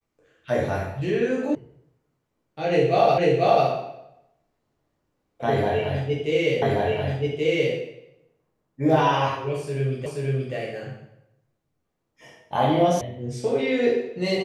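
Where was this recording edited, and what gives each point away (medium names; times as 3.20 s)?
1.55 s: sound stops dead
3.18 s: repeat of the last 0.49 s
6.62 s: repeat of the last 1.13 s
10.06 s: repeat of the last 0.48 s
13.01 s: sound stops dead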